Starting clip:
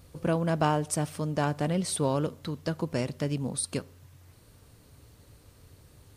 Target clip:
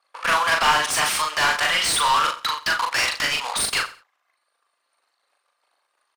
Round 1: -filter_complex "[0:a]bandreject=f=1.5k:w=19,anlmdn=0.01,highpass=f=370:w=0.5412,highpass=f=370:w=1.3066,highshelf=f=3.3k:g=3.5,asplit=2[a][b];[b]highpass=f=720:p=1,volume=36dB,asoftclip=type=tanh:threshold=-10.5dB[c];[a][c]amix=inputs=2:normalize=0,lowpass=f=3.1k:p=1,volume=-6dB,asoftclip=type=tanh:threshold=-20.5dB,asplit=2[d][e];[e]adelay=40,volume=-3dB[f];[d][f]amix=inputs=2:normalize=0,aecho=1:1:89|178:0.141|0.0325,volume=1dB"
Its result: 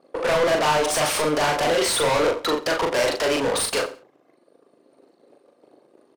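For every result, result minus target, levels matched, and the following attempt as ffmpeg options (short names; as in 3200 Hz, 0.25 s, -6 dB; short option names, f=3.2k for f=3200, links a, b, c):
500 Hz band +14.0 dB; soft clip: distortion +11 dB
-filter_complex "[0:a]bandreject=f=1.5k:w=19,anlmdn=0.01,highpass=f=1.1k:w=0.5412,highpass=f=1.1k:w=1.3066,highshelf=f=3.3k:g=3.5,asplit=2[a][b];[b]highpass=f=720:p=1,volume=36dB,asoftclip=type=tanh:threshold=-10.5dB[c];[a][c]amix=inputs=2:normalize=0,lowpass=f=3.1k:p=1,volume=-6dB,asoftclip=type=tanh:threshold=-20.5dB,asplit=2[d][e];[e]adelay=40,volume=-3dB[f];[d][f]amix=inputs=2:normalize=0,aecho=1:1:89|178:0.141|0.0325,volume=1dB"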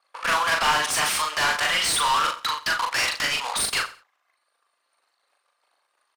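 soft clip: distortion +11 dB
-filter_complex "[0:a]bandreject=f=1.5k:w=19,anlmdn=0.01,highpass=f=1.1k:w=0.5412,highpass=f=1.1k:w=1.3066,highshelf=f=3.3k:g=3.5,asplit=2[a][b];[b]highpass=f=720:p=1,volume=36dB,asoftclip=type=tanh:threshold=-10.5dB[c];[a][c]amix=inputs=2:normalize=0,lowpass=f=3.1k:p=1,volume=-6dB,asoftclip=type=tanh:threshold=-13.5dB,asplit=2[d][e];[e]adelay=40,volume=-3dB[f];[d][f]amix=inputs=2:normalize=0,aecho=1:1:89|178:0.141|0.0325,volume=1dB"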